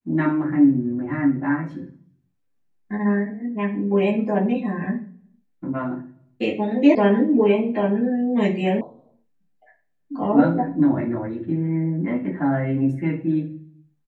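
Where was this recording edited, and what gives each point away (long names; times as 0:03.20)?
0:06.95: cut off before it has died away
0:08.81: cut off before it has died away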